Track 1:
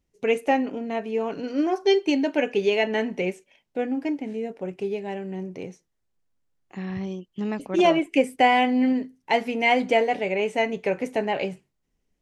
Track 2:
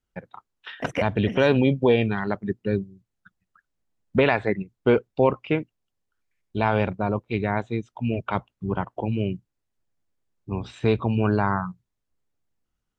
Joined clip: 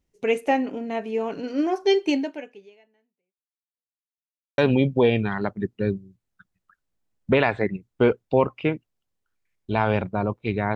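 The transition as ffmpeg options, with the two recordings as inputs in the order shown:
-filter_complex "[0:a]apad=whole_dur=10.75,atrim=end=10.75,asplit=2[s0][s1];[s0]atrim=end=4.02,asetpts=PTS-STARTPTS,afade=t=out:st=2.16:d=1.86:c=exp[s2];[s1]atrim=start=4.02:end=4.58,asetpts=PTS-STARTPTS,volume=0[s3];[1:a]atrim=start=1.44:end=7.61,asetpts=PTS-STARTPTS,afade=t=in:d=0.004:c=hsin[s4];[s2][s3][s4]concat=n=3:v=0:a=1"

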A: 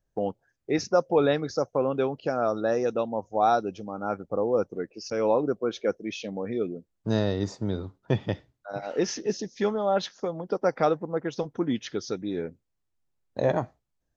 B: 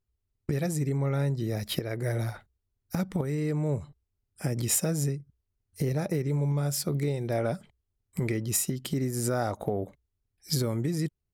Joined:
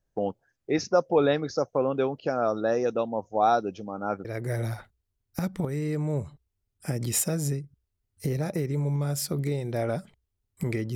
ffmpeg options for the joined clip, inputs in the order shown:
-filter_complex "[0:a]apad=whole_dur=10.95,atrim=end=10.95,atrim=end=4.252[s0];[1:a]atrim=start=1.808:end=8.51[s1];[s0][s1]acrossfade=d=0.004:c1=hsin:c2=hsin"

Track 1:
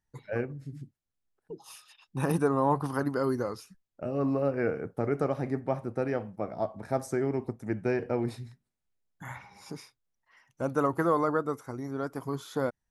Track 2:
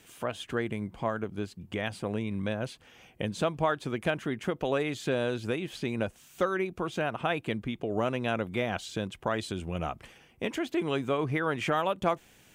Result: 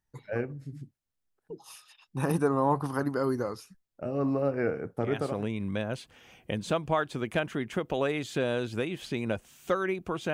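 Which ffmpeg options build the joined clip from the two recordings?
-filter_complex "[0:a]apad=whole_dur=10.33,atrim=end=10.33,atrim=end=5.48,asetpts=PTS-STARTPTS[s0];[1:a]atrim=start=1.69:end=7.04,asetpts=PTS-STARTPTS[s1];[s0][s1]acrossfade=d=0.5:c1=qsin:c2=qsin"

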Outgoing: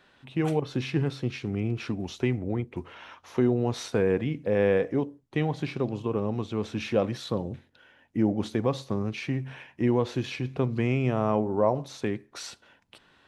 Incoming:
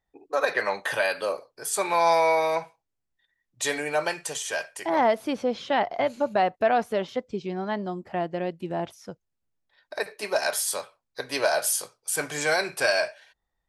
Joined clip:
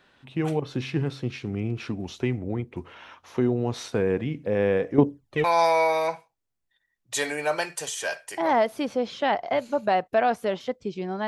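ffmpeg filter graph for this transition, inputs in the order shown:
-filter_complex "[0:a]asettb=1/sr,asplit=3[s0][s1][s2];[s0]atrim=end=4.984[s3];[s1]atrim=start=4.98:end=5.44,asetpts=PTS-STARTPTS,afade=t=in:d=0.004:c=qsin,afade=t=out:st=0.456:d=0.004:c=qsin,aphaser=in_gain=1:out_gain=1:delay=3.4:decay=0.71:speed=0.69:type=sinusoidal[s4];[s2]atrim=start=5.436[s5];[s3][s4]acrossfade=d=0.004:c1=hsin:c2=qsin[s6];[s6][s5]acrossfade=d=0.004:c1=qsin:c2=hsin,apad=whole_dur=11.27,atrim=end=11.27,atrim=end=5.442[s7];[1:a]atrim=start=1.918:end=7.75[s8];[s7][s8]acrossfade=d=0.004:c1=hsin:c2=hsin"

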